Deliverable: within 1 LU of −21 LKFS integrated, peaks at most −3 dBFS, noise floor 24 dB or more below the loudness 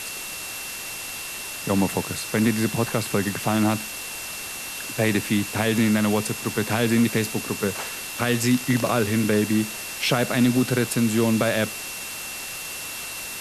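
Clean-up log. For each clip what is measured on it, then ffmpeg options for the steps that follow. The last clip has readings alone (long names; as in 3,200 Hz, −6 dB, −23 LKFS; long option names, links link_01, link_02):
interfering tone 2,700 Hz; level of the tone −37 dBFS; background noise floor −34 dBFS; target noise floor −48 dBFS; integrated loudness −24.0 LKFS; sample peak −7.5 dBFS; target loudness −21.0 LKFS
→ -af "bandreject=frequency=2700:width=30"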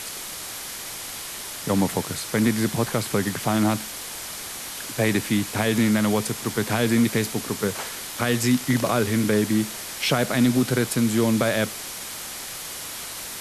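interfering tone none found; background noise floor −35 dBFS; target noise floor −48 dBFS
→ -af "afftdn=noise_reduction=13:noise_floor=-35"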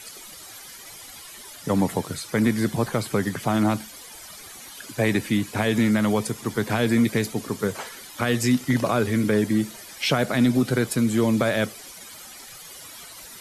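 background noise floor −43 dBFS; target noise floor −48 dBFS
→ -af "afftdn=noise_reduction=6:noise_floor=-43"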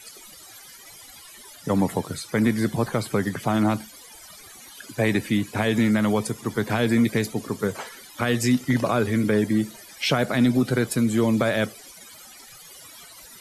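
background noise floor −46 dBFS; target noise floor −48 dBFS
→ -af "afftdn=noise_reduction=6:noise_floor=-46"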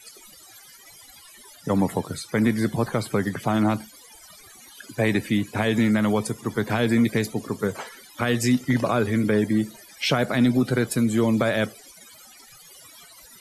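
background noise floor −49 dBFS; integrated loudness −23.5 LKFS; sample peak −8.5 dBFS; target loudness −21.0 LKFS
→ -af "volume=2.5dB"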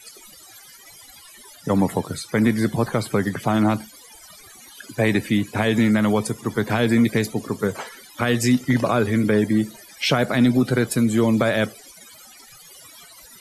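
integrated loudness −21.0 LKFS; sample peak −6.0 dBFS; background noise floor −46 dBFS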